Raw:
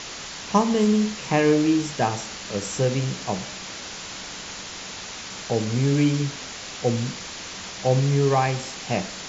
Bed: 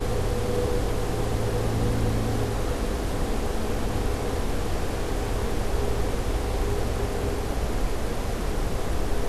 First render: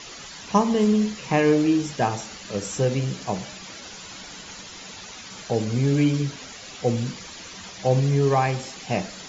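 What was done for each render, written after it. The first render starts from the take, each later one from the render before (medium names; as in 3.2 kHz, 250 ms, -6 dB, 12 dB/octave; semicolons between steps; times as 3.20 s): noise reduction 10 dB, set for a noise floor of -37 dBFS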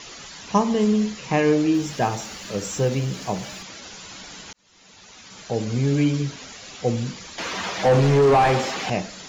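1.74–3.63 s: companding laws mixed up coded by mu; 4.53–5.73 s: fade in; 7.38–8.90 s: overdrive pedal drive 27 dB, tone 1.1 kHz, clips at -7.5 dBFS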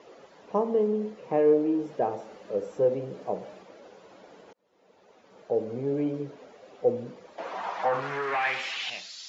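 in parallel at -11 dB: hard clipper -20 dBFS, distortion -9 dB; on the sum: band-pass sweep 500 Hz -> 4.5 kHz, 7.22–9.16 s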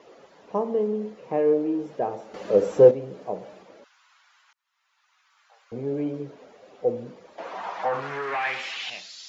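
2.34–2.91 s: gain +10.5 dB; 3.84–5.72 s: steep high-pass 1.1 kHz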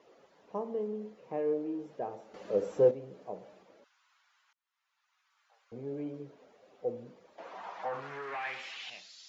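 trim -10.5 dB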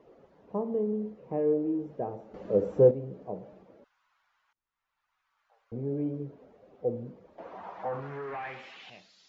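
tilt EQ -4 dB/octave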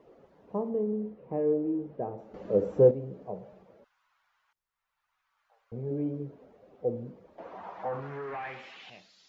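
0.69–2.18 s: distance through air 210 m; 3.27–5.91 s: peaking EQ 290 Hz -15 dB 0.27 oct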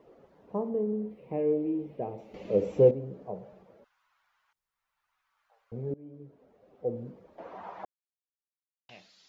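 1.10–2.91 s: resonant high shelf 1.9 kHz +6 dB, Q 3; 5.94–7.10 s: fade in, from -23.5 dB; 7.85–8.89 s: mute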